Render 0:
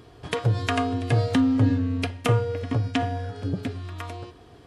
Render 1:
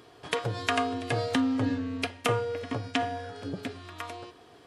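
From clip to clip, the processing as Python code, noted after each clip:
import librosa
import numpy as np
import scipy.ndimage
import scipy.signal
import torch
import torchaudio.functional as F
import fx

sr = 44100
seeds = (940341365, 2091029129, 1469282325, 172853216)

y = fx.highpass(x, sr, hz=440.0, slope=6)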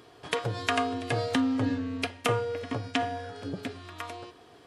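y = x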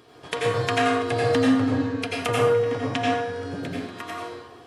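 y = fx.rev_plate(x, sr, seeds[0], rt60_s=0.99, hf_ratio=0.55, predelay_ms=75, drr_db=-4.5)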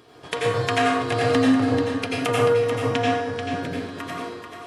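y = x + 10.0 ** (-7.5 / 20.0) * np.pad(x, (int(437 * sr / 1000.0), 0))[:len(x)]
y = y * librosa.db_to_amplitude(1.0)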